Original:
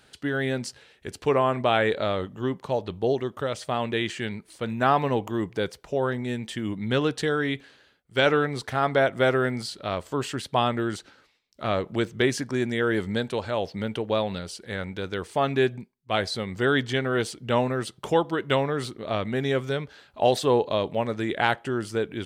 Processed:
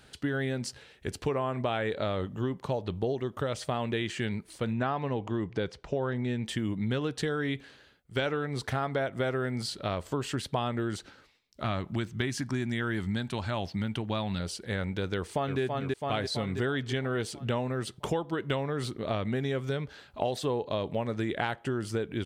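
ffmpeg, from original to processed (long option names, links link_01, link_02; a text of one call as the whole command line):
ffmpeg -i in.wav -filter_complex "[0:a]asettb=1/sr,asplit=3[link_01][link_02][link_03];[link_01]atrim=end=4.704[link_04];[link_02]atrim=start=4.7:end=6.46,asetpts=PTS-STARTPTS,afade=type=in:duration=0.004:curve=qsin,afade=type=out:start_time=1.756:duration=0.004:curve=qsin,lowpass=5300[link_05];[link_03]atrim=start=6.456[link_06];[link_04][link_05]acrossfade=duration=0.004:curve1=hsin:curve2=qsin[link_07];[link_07][link_06]acrossfade=duration=0.004:curve1=qsin:curve2=hsin,asettb=1/sr,asplit=3[link_08][link_09][link_10];[link_08]atrim=end=11.644[link_11];[link_09]atrim=start=11.64:end=14.4,asetpts=PTS-STARTPTS,afade=type=in:duration=0.004:curve=qsin,afade=type=out:start_time=2.756:duration=0.004:curve=qsin,equalizer=frequency=480:width=2.3:gain=-12.5[link_12];[link_10]atrim=start=14.396[link_13];[link_11][link_12]acrossfade=duration=0.004:curve1=hsin:curve2=qsin[link_14];[link_14][link_13]acrossfade=duration=0.004:curve1=qsin:curve2=hsin,asplit=2[link_15][link_16];[link_16]afade=type=in:start_time=15.14:duration=0.01,afade=type=out:start_time=15.6:duration=0.01,aecho=0:1:330|660|990|1320|1650|1980|2310|2640:0.668344|0.367589|0.202174|0.111196|0.0611576|0.0336367|0.0185002|0.0101751[link_17];[link_15][link_17]amix=inputs=2:normalize=0,lowshelf=frequency=170:gain=7,acompressor=threshold=-27dB:ratio=6" out.wav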